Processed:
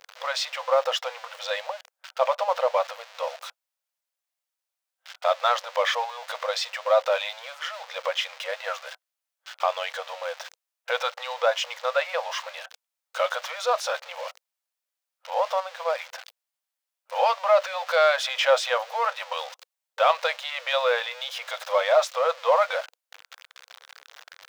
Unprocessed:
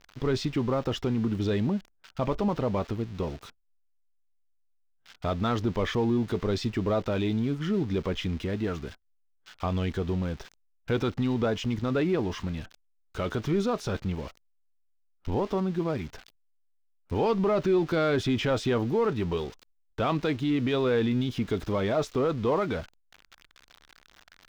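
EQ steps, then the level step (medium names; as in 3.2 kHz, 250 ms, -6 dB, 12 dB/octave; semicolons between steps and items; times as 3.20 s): brick-wall FIR high-pass 490 Hz; +9.0 dB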